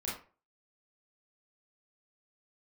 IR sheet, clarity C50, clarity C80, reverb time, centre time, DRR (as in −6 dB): 4.0 dB, 10.5 dB, 0.40 s, 43 ms, −7.0 dB